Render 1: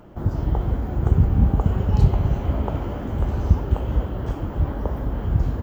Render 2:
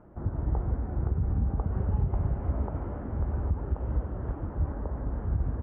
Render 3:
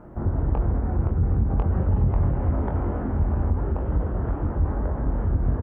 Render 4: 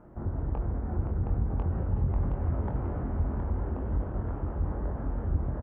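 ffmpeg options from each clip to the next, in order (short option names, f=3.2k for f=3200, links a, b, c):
-af "alimiter=limit=-12dB:level=0:latency=1:release=111,lowpass=f=1.8k:w=0.5412,lowpass=f=1.8k:w=1.3066,equalizer=f=69:t=o:w=0.58:g=4,volume=-8dB"
-filter_complex "[0:a]asoftclip=type=tanh:threshold=-25dB,asplit=2[a][b];[b]adelay=23,volume=-6dB[c];[a][c]amix=inputs=2:normalize=0,volume=8.5dB"
-af "aecho=1:1:718:0.562,volume=-8dB"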